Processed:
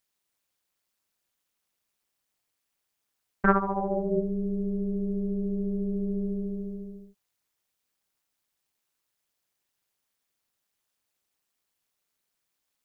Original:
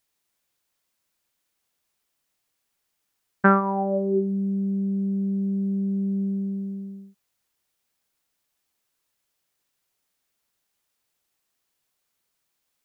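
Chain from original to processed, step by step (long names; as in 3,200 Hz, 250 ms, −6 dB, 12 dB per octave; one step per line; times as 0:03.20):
amplitude modulation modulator 210 Hz, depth 80%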